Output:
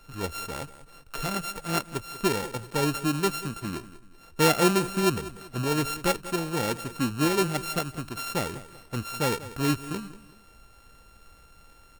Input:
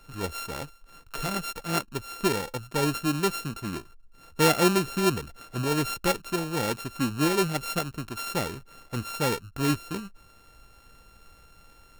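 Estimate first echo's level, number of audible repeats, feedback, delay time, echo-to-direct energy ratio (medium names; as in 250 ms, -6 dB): -16.0 dB, 3, 35%, 190 ms, -15.5 dB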